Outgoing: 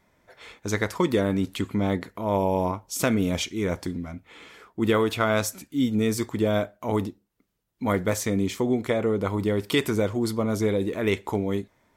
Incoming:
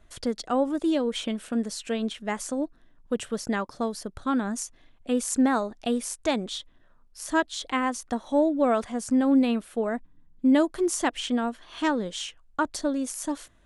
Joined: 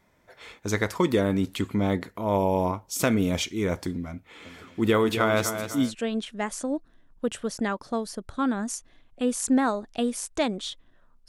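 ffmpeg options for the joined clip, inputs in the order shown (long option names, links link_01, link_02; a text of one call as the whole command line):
ffmpeg -i cue0.wav -i cue1.wav -filter_complex "[0:a]asplit=3[link_01][link_02][link_03];[link_01]afade=type=out:start_time=4.44:duration=0.02[link_04];[link_02]aecho=1:1:252|504|756|1008|1260:0.355|0.149|0.0626|0.0263|0.011,afade=type=in:start_time=4.44:duration=0.02,afade=type=out:start_time=5.95:duration=0.02[link_05];[link_03]afade=type=in:start_time=5.95:duration=0.02[link_06];[link_04][link_05][link_06]amix=inputs=3:normalize=0,apad=whole_dur=11.28,atrim=end=11.28,atrim=end=5.95,asetpts=PTS-STARTPTS[link_07];[1:a]atrim=start=1.69:end=7.16,asetpts=PTS-STARTPTS[link_08];[link_07][link_08]acrossfade=duration=0.14:curve1=tri:curve2=tri" out.wav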